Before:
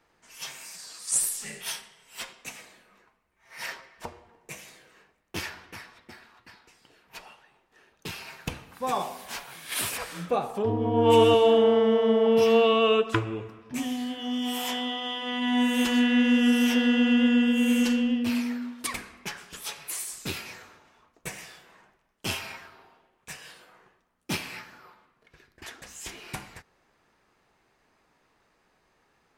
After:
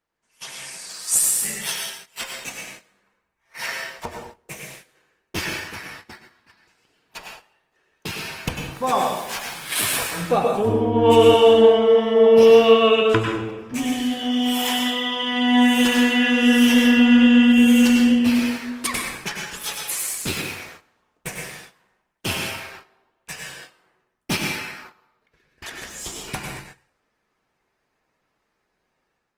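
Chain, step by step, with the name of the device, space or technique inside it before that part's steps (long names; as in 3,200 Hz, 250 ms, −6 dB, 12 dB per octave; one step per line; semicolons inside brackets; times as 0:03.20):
0:25.87–0:26.28: flat-topped bell 2,000 Hz −9 dB 1 octave
speakerphone in a meeting room (convolution reverb RT60 0.65 s, pre-delay 92 ms, DRR 1.5 dB; automatic gain control gain up to 6.5 dB; noise gate −40 dBFS, range −14 dB; Opus 24 kbit/s 48,000 Hz)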